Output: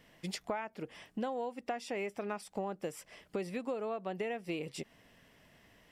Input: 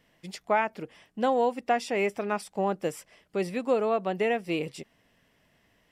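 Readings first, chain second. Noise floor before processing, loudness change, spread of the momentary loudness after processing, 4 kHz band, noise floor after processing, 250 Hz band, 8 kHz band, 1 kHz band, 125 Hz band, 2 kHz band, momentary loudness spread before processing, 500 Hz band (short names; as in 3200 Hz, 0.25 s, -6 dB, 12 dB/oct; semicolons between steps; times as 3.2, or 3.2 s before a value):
-68 dBFS, -11.0 dB, 7 LU, -6.0 dB, -67 dBFS, -8.0 dB, -5.0 dB, -12.0 dB, -6.5 dB, -11.0 dB, 16 LU, -11.0 dB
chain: compressor 6:1, threshold -39 dBFS, peak gain reduction 18 dB; gain +3.5 dB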